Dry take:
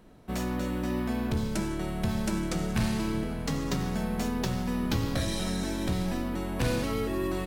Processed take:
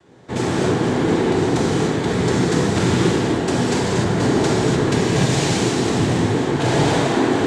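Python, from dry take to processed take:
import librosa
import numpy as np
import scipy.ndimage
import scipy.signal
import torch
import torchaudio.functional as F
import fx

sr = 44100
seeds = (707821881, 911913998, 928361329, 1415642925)

p1 = fx.schmitt(x, sr, flips_db=-40.5)
p2 = x + (p1 * 10.0 ** (-7.5 / 20.0))
p3 = fx.noise_vocoder(p2, sr, seeds[0], bands=6)
p4 = fx.rev_gated(p3, sr, seeds[1], gate_ms=320, shape='flat', drr_db=-5.5)
y = p4 * 10.0 ** (4.5 / 20.0)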